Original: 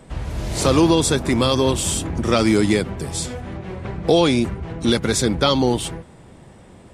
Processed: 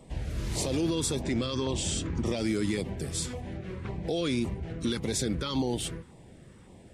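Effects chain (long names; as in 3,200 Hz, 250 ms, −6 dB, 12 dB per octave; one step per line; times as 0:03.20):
0:01.21–0:02.26: low-pass filter 7,600 Hz 24 dB per octave
brickwall limiter −13 dBFS, peak gain reduction 9.5 dB
auto-filter notch saw down 1.8 Hz 590–1,600 Hz
level −6.5 dB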